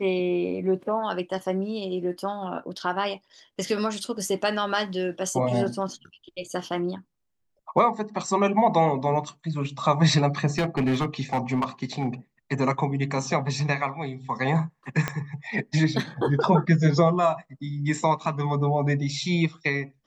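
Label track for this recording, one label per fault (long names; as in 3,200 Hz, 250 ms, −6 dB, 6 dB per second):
10.580000	12.070000	clipping −19.5 dBFS
15.080000	15.080000	click −11 dBFS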